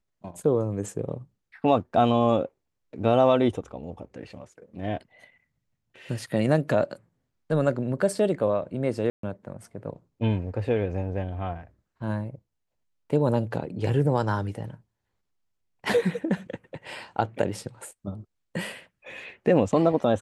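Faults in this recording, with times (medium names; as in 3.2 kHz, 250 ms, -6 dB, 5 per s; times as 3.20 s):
9.10–9.23 s: dropout 133 ms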